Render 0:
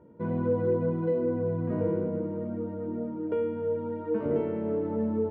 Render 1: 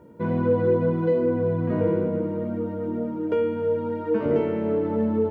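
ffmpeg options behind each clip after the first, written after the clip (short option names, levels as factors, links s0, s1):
-af "highshelf=f=2100:g=11,volume=1.78"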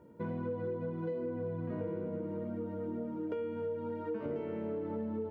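-af "acompressor=threshold=0.0501:ratio=6,volume=0.398"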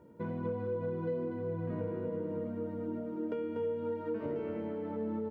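-af "aecho=1:1:242:0.501"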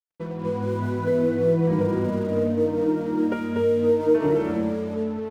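-filter_complex "[0:a]dynaudnorm=f=110:g=11:m=2.99,aeval=exprs='sgn(val(0))*max(abs(val(0))-0.00376,0)':c=same,asplit=2[s0][s1];[s1]adelay=4.1,afreqshift=0.73[s2];[s0][s2]amix=inputs=2:normalize=1,volume=2.66"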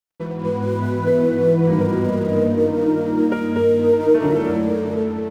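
-af "aecho=1:1:613:0.237,volume=1.68"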